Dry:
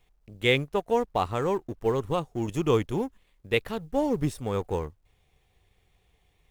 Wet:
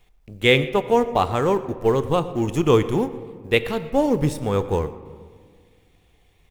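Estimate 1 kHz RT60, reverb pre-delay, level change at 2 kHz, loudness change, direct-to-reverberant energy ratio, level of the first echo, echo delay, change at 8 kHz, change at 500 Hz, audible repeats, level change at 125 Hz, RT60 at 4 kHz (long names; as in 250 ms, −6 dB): 1.7 s, 4 ms, +6.5 dB, +7.0 dB, 11.5 dB, −21.0 dB, 119 ms, +6.5 dB, +7.0 dB, 1, +6.5 dB, 1.1 s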